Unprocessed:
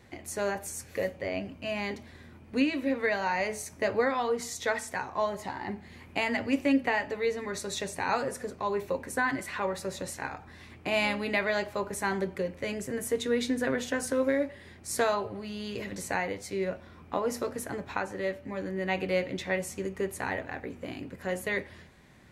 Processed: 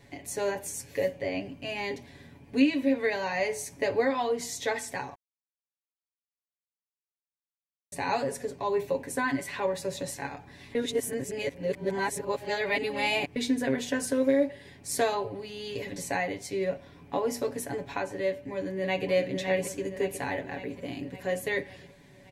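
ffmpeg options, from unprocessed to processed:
-filter_complex "[0:a]asplit=2[s0][s1];[s1]afade=t=in:st=18.27:d=0.01,afade=t=out:st=19.11:d=0.01,aecho=0:1:560|1120|1680|2240|2800|3360|3920|4480:0.473151|0.283891|0.170334|0.102201|0.0613204|0.0367922|0.0220753|0.0132452[s2];[s0][s2]amix=inputs=2:normalize=0,asplit=5[s3][s4][s5][s6][s7];[s3]atrim=end=5.15,asetpts=PTS-STARTPTS,afade=t=out:st=5.146:d=0.004:c=hsin[s8];[s4]atrim=start=5.15:end=7.92,asetpts=PTS-STARTPTS,volume=0[s9];[s5]atrim=start=7.92:end=10.752,asetpts=PTS-STARTPTS,afade=t=in:d=0.004:c=hsin[s10];[s6]atrim=start=10.748:end=13.362,asetpts=PTS-STARTPTS,areverse[s11];[s7]atrim=start=13.358[s12];[s8][s9][s10]concat=n=3:v=0:a=1[s13];[s13][s11]acrossfade=d=0.004:c1=hsin:c2=hsin[s14];[s14][s12]acrossfade=d=0.004:c1=hsin:c2=hsin,equalizer=f=1300:t=o:w=0.37:g=-10.5,aecho=1:1:7.1:0.7"

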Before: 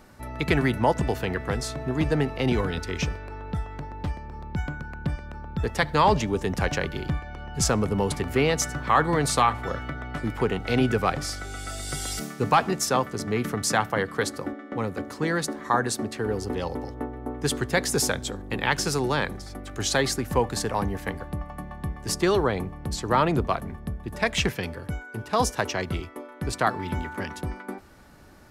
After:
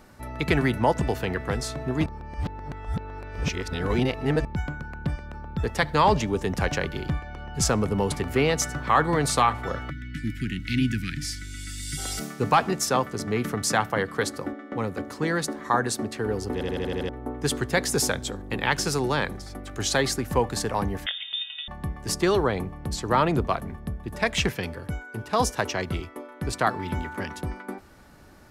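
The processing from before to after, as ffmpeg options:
-filter_complex "[0:a]asplit=3[s0][s1][s2];[s0]afade=t=out:st=9.89:d=0.02[s3];[s1]asuperstop=centerf=710:order=12:qfactor=0.55,afade=t=in:st=9.89:d=0.02,afade=t=out:st=11.97:d=0.02[s4];[s2]afade=t=in:st=11.97:d=0.02[s5];[s3][s4][s5]amix=inputs=3:normalize=0,asettb=1/sr,asplit=3[s6][s7][s8];[s6]atrim=end=21.064[s9];[s7]atrim=start=21.06:end=21.68,asetpts=PTS-STARTPTS,afade=t=in:d=0.004:c=qsin,afade=t=out:st=0.616:d=0.004:c=qsin,lowpass=f=3100:t=q:w=0.5098,lowpass=f=3100:t=q:w=0.6013,lowpass=f=3100:t=q:w=0.9,lowpass=f=3100:t=q:w=2.563,afreqshift=-3700[s10];[s8]atrim=start=21.676[s11];[s9][s10]acrossfade=d=0.004:c1=hsin:c2=qsin[s12];[s12][s11]acrossfade=d=0.004:c1=qsin:c2=hsin,asplit=10[s13][s14][s15][s16][s17][s18][s19][s20][s21][s22];[s13]atrim=end=2.062[s23];[s14]atrim=start=2.058:end=4.452,asetpts=PTS-STARTPTS,areverse[s24];[s15]atrim=start=4.448:end=16.612[s25];[s16]atrim=start=16.528:end=16.612[s26];[s17]atrim=start=16.528:end=16.612[s27];[s18]atrim=start=16.528:end=16.612[s28];[s19]atrim=start=16.528:end=16.612[s29];[s20]atrim=start=16.528:end=16.612[s30];[s21]atrim=start=16.528:end=16.612[s31];[s22]atrim=start=17.088[s32];[s23][s24]acrossfade=d=0.004:c1=hsin:c2=hsin[s33];[s33][s25]acrossfade=d=0.004:c1=hsin:c2=hsin[s34];[s34][s26]acrossfade=d=0.004:c1=hsin:c2=hsin[s35];[s35][s27]acrossfade=d=0.004:c1=hsin:c2=hsin[s36];[s36][s28]acrossfade=d=0.004:c1=hsin:c2=hsin[s37];[s37][s29]acrossfade=d=0.004:c1=hsin:c2=hsin[s38];[s38][s30]acrossfade=d=0.004:c1=hsin:c2=hsin[s39];[s39][s31]acrossfade=d=0.004:c1=hsin:c2=hsin[s40];[s40][s32]acrossfade=d=0.004:c1=hsin:c2=hsin"

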